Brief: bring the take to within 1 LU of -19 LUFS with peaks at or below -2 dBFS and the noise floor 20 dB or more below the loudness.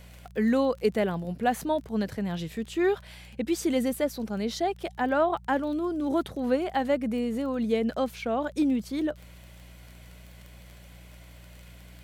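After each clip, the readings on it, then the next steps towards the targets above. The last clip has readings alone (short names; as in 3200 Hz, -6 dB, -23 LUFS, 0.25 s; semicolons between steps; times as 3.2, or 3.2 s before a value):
ticks 21/s; hum 60 Hz; harmonics up to 180 Hz; hum level -47 dBFS; loudness -28.0 LUFS; peak -13.0 dBFS; loudness target -19.0 LUFS
-> de-click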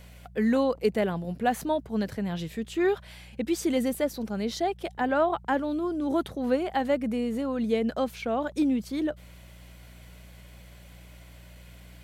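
ticks 0/s; hum 60 Hz; harmonics up to 180 Hz; hum level -47 dBFS
-> de-hum 60 Hz, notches 3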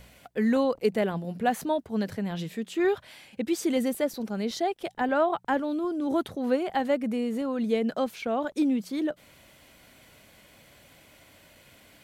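hum none; loudness -28.5 LUFS; peak -13.0 dBFS; loudness target -19.0 LUFS
-> gain +9.5 dB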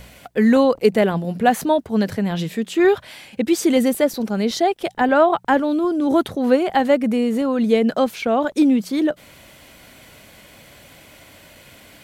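loudness -19.0 LUFS; peak -3.5 dBFS; noise floor -47 dBFS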